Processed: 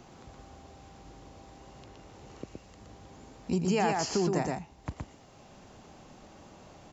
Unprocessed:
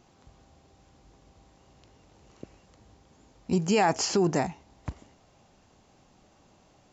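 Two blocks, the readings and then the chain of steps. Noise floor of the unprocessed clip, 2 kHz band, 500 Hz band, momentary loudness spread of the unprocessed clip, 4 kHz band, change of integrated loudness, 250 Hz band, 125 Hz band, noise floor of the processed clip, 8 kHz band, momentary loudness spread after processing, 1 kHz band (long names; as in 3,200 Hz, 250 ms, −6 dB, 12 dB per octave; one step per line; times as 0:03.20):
−62 dBFS, −4.0 dB, −3.5 dB, 19 LU, −5.0 dB, −3.5 dB, −2.5 dB, −2.0 dB, −55 dBFS, can't be measured, 20 LU, −3.5 dB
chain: single-tap delay 119 ms −3.5 dB
multiband upward and downward compressor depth 40%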